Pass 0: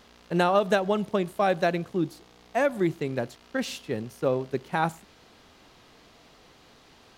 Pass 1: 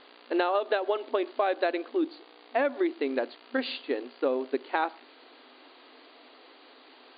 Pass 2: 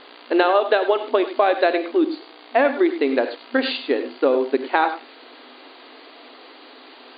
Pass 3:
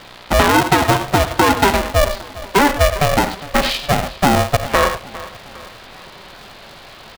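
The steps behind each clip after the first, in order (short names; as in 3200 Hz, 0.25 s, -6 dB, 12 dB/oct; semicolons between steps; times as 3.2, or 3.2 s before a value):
FFT band-pass 240–4800 Hz; compressor 6:1, threshold -25 dBFS, peak gain reduction 8.5 dB; gain +2.5 dB
non-linear reverb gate 0.12 s rising, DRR 9.5 dB; gain +9 dB
feedback echo 0.404 s, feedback 45%, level -19 dB; in parallel at -4 dB: overloaded stage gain 16.5 dB; on the sum: polarity switched at an audio rate 290 Hz; gain +1 dB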